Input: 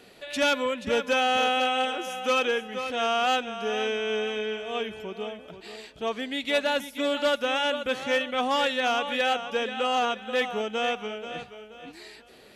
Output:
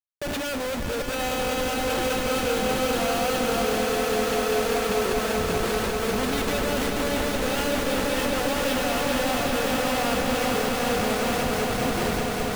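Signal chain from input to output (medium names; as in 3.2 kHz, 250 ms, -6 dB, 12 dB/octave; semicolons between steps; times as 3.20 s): dynamic bell 460 Hz, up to +4 dB, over -39 dBFS, Q 4.8; reverse; compression 16:1, threshold -32 dBFS, peak gain reduction 14.5 dB; reverse; Schmitt trigger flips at -41.5 dBFS; on a send: echo with a slow build-up 196 ms, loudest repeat 5, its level -7 dB; on the sum: trim +8 dB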